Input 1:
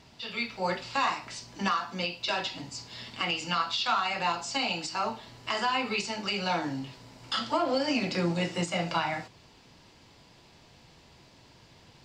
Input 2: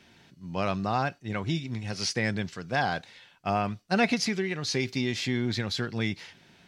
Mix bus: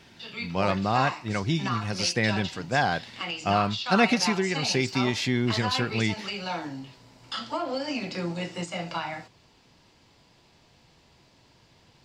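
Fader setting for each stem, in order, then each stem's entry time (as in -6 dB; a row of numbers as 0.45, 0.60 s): -3.0, +3.0 dB; 0.00, 0.00 s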